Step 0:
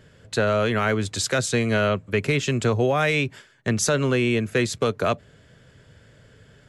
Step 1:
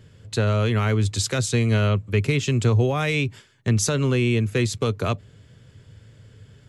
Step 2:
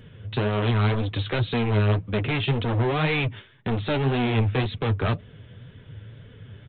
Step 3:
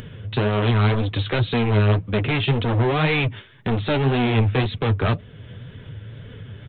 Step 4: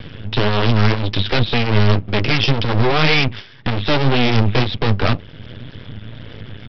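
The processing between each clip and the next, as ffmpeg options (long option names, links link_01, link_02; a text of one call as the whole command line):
ffmpeg -i in.wav -af "equalizer=frequency=100:width_type=o:width=0.67:gain=9,equalizer=frequency=630:width_type=o:width=0.67:gain=-6,equalizer=frequency=1600:width_type=o:width=0.67:gain=-6" out.wav
ffmpeg -i in.wav -af "aresample=8000,asoftclip=type=hard:threshold=-26dB,aresample=44100,flanger=delay=4:depth=6.4:regen=35:speed=1.9:shape=sinusoidal,volume=8.5dB" out.wav
ffmpeg -i in.wav -af "acompressor=mode=upward:threshold=-35dB:ratio=2.5,volume=3.5dB" out.wav
ffmpeg -i in.wav -af "aresample=11025,aeval=exprs='max(val(0),0)':channel_layout=same,aresample=44100,highshelf=frequency=3900:gain=10,volume=8dB" out.wav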